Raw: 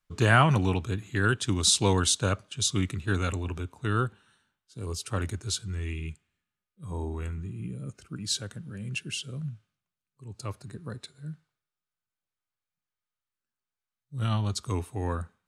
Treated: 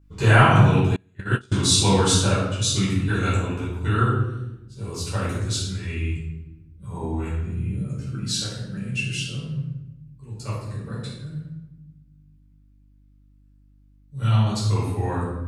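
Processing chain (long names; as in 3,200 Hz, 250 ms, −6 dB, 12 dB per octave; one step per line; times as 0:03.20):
rectangular room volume 380 cubic metres, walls mixed, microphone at 4.8 metres
hum with harmonics 50 Hz, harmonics 6, −49 dBFS −7 dB per octave
0:00.96–0:01.54: noise gate −10 dBFS, range −31 dB
level −6 dB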